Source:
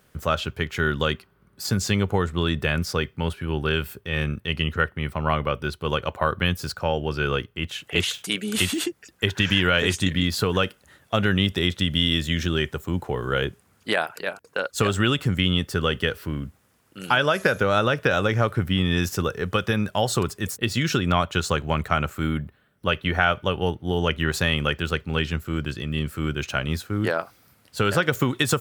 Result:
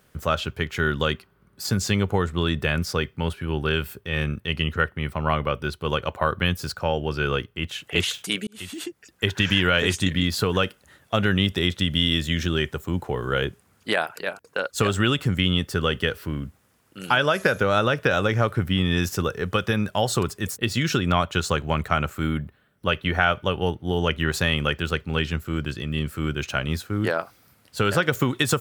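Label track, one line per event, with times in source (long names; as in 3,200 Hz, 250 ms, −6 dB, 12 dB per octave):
8.470000	9.280000	fade in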